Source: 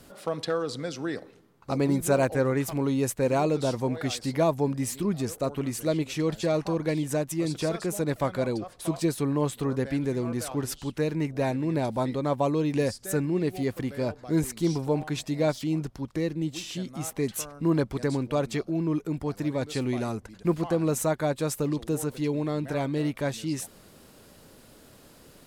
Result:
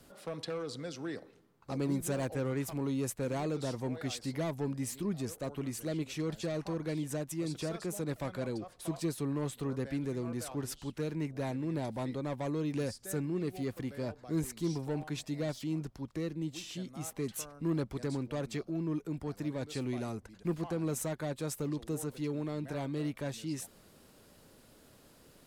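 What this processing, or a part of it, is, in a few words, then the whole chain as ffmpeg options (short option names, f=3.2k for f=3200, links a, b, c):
one-band saturation: -filter_complex "[0:a]acrossover=split=330|3500[a][b][c];[b]asoftclip=type=tanh:threshold=-28dB[d];[a][d][c]amix=inputs=3:normalize=0,volume=-7dB"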